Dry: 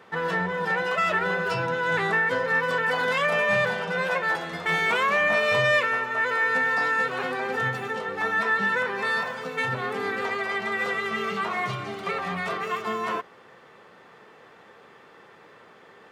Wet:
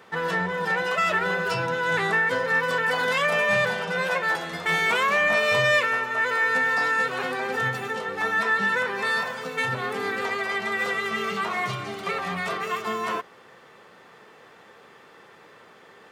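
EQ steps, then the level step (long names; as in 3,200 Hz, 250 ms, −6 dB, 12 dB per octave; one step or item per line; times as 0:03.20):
high-shelf EQ 4,400 Hz +7 dB
0.0 dB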